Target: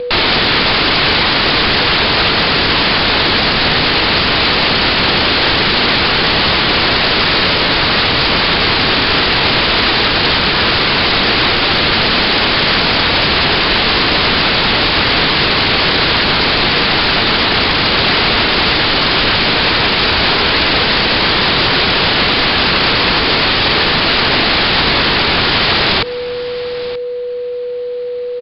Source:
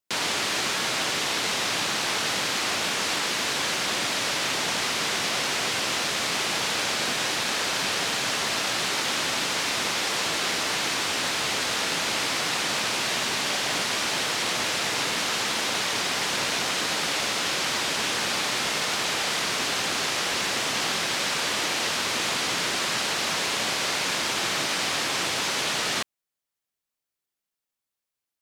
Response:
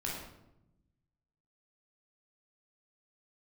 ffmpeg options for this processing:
-af "highshelf=f=4k:g=-3,acompressor=mode=upward:threshold=-43dB:ratio=2.5,afreqshift=150,acontrast=24,aeval=exprs='val(0)+0.0112*sin(2*PI*980*n/s)':c=same,aresample=11025,aeval=exprs='(mod(11.2*val(0)+1,2)-1)/11.2':c=same,aresample=44100,afreqshift=-490,aecho=1:1:929:0.0631,alimiter=level_in=24dB:limit=-1dB:release=50:level=0:latency=1,volume=-3dB"

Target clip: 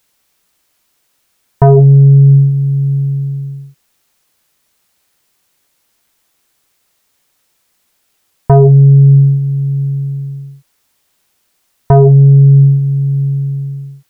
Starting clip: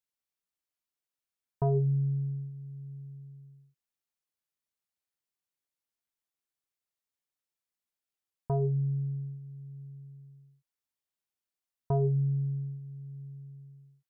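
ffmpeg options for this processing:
-af "apsyclip=31.5dB,volume=-1.5dB"

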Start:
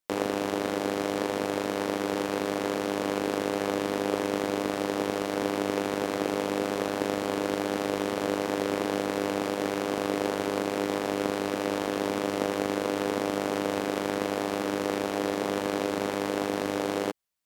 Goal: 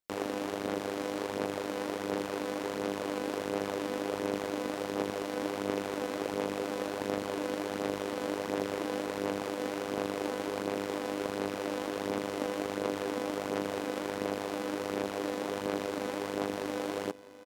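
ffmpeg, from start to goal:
-af "aphaser=in_gain=1:out_gain=1:delay=4:decay=0.34:speed=1.4:type=sinusoidal,aecho=1:1:652|1304|1956|2608|3260:0.112|0.0662|0.0391|0.023|0.0136,volume=-6.5dB"

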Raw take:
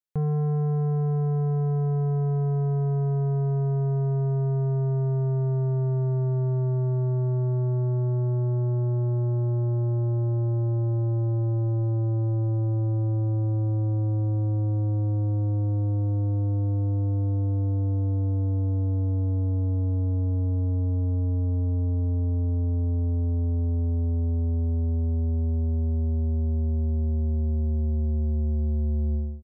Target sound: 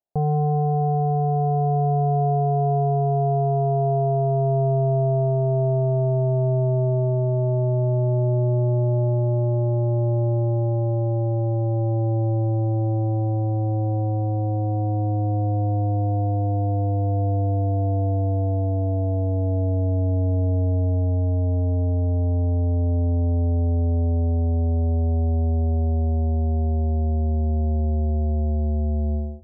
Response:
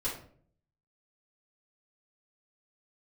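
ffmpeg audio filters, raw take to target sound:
-filter_complex "[0:a]lowpass=f=700:t=q:w=6.7,asplit=2[a][b];[1:a]atrim=start_sample=2205[c];[b][c]afir=irnorm=-1:irlink=0,volume=-25dB[d];[a][d]amix=inputs=2:normalize=0,volume=2dB"

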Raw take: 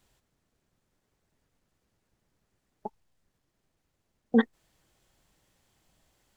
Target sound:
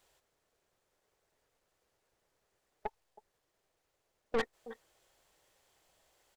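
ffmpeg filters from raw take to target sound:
-filter_complex "[0:a]lowshelf=f=330:t=q:w=1.5:g=-10,asplit=2[a][b];[b]adelay=320.7,volume=-22dB,highshelf=f=4k:g=-7.22[c];[a][c]amix=inputs=2:normalize=0,aeval=exprs='(tanh(31.6*val(0)+0.55)-tanh(0.55))/31.6':c=same,volume=2.5dB"

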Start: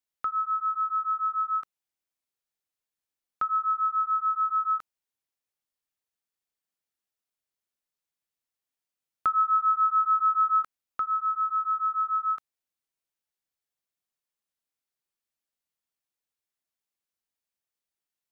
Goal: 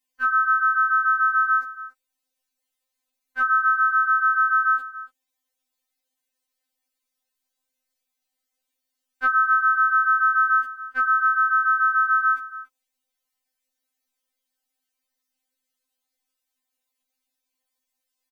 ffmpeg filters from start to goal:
-filter_complex "[0:a]equalizer=f=1.2k:w=3.7:g=-5.5,acompressor=threshold=-35dB:ratio=6,asplit=2[a][b];[b]asetrate=52444,aresample=44100,atempo=0.840896,volume=0dB[c];[a][c]amix=inputs=2:normalize=0,asplit=2[d][e];[e]aecho=0:1:284:0.158[f];[d][f]amix=inputs=2:normalize=0,afftfilt=real='re*3.46*eq(mod(b,12),0)':imag='im*3.46*eq(mod(b,12),0)':win_size=2048:overlap=0.75,volume=8dB"

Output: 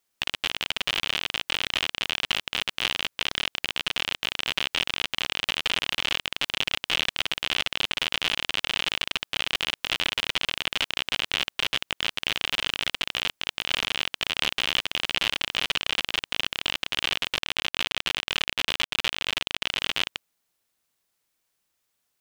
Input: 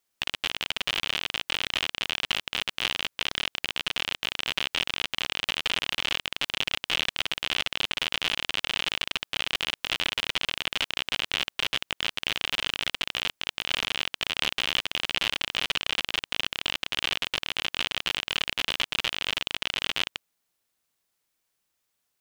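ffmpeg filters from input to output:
-filter_complex "[0:a]asettb=1/sr,asplit=3[a][b][c];[a]atrim=end=17.344[d];[b]atrim=start=17.34:end=19.62,asetpts=PTS-STARTPTS,afade=t=in:d=0.004:c=qsin,afade=t=out:st=2.276:d=0.004:c=qsin,aeval=exprs='sgn(val(0))*max(abs(val(0))-0.0126,0)':c=same[e];[c]atrim=start=19.616[f];[d][e]acrossfade=d=0.004:c1=hsin:c2=qsin[g];[g][f]acrossfade=d=0.004:c1=qsin:c2=hsin,volume=1.5dB"

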